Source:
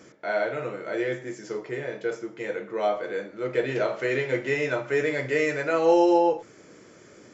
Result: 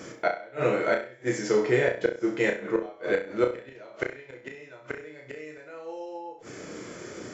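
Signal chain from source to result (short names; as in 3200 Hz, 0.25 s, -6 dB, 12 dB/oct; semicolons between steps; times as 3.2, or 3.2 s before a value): flipped gate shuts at -20 dBFS, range -29 dB; flutter echo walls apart 5.6 m, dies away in 0.36 s; gain +8.5 dB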